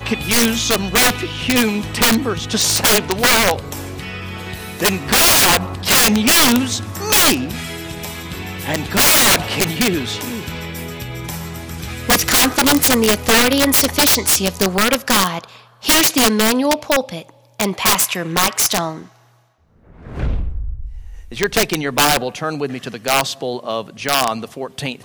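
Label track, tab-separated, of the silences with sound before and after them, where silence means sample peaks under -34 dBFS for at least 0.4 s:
19.060000	19.900000	silence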